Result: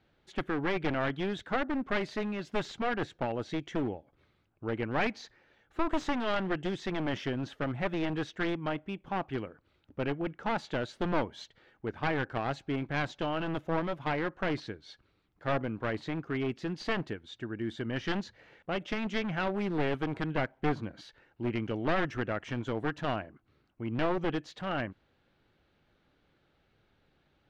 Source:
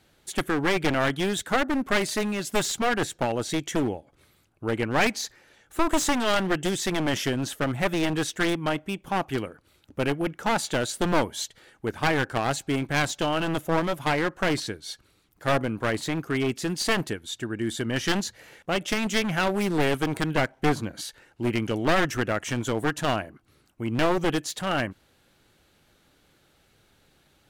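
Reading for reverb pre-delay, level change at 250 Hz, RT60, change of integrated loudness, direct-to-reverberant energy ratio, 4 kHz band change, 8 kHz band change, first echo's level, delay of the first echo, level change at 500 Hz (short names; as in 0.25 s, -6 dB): none, -6.5 dB, none, -7.0 dB, none, -11.5 dB, -23.5 dB, none, none, -6.5 dB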